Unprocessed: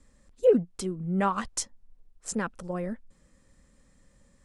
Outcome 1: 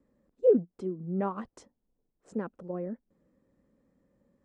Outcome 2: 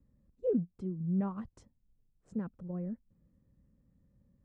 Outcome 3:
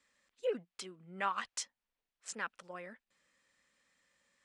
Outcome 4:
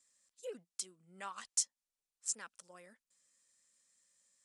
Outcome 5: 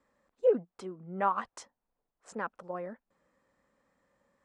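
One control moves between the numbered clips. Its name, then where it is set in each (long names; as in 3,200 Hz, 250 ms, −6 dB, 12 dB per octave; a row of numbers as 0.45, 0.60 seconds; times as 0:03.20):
resonant band-pass, frequency: 350, 120, 2,600, 7,600, 910 Hertz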